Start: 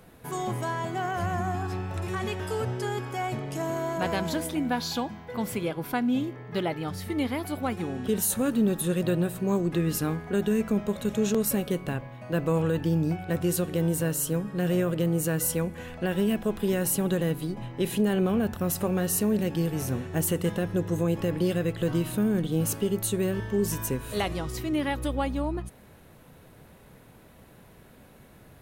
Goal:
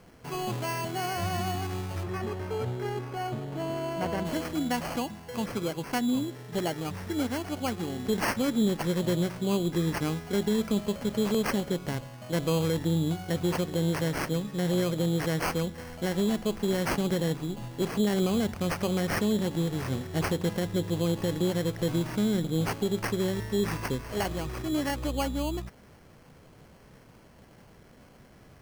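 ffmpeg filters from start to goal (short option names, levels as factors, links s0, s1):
-filter_complex "[0:a]acrusher=samples=12:mix=1:aa=0.000001,asplit=3[s0][s1][s2];[s0]afade=t=out:st=2.02:d=0.02[s3];[s1]highshelf=f=2800:g=-11.5,afade=t=in:st=2.02:d=0.02,afade=t=out:st=4.25:d=0.02[s4];[s2]afade=t=in:st=4.25:d=0.02[s5];[s3][s4][s5]amix=inputs=3:normalize=0,volume=0.841"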